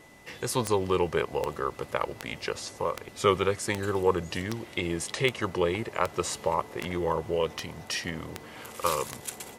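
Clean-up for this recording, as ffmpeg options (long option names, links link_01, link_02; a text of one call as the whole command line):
ffmpeg -i in.wav -af "adeclick=threshold=4,bandreject=frequency=2000:width=30" out.wav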